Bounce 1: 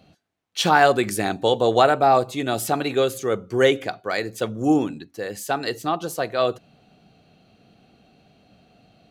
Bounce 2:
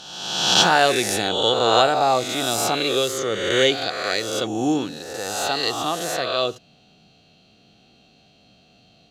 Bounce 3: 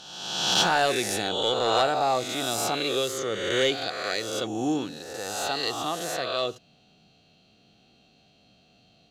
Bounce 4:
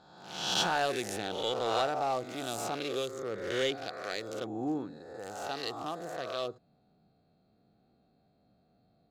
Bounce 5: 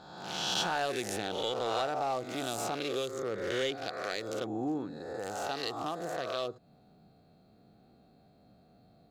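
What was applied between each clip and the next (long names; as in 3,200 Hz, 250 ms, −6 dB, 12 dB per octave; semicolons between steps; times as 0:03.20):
peak hold with a rise ahead of every peak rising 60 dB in 1.25 s; flat-topped bell 4,600 Hz +9 dB; level −4 dB
soft clipping −7 dBFS, distortion −20 dB; level −5 dB
adaptive Wiener filter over 15 samples; level −6.5 dB
downward compressor 2 to 1, threshold −44 dBFS, peak gain reduction 10.5 dB; level +7.5 dB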